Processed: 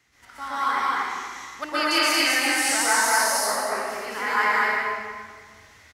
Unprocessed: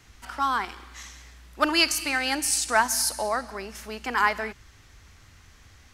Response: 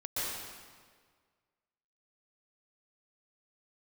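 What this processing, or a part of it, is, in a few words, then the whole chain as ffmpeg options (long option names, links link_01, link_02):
stadium PA: -filter_complex "[0:a]highpass=frequency=230:poles=1,equalizer=frequency=2000:width_type=o:width=0.22:gain=8,aecho=1:1:198.3|230.3|268.2:0.282|0.891|0.282[link_01];[1:a]atrim=start_sample=2205[link_02];[link_01][link_02]afir=irnorm=-1:irlink=0,volume=-5dB"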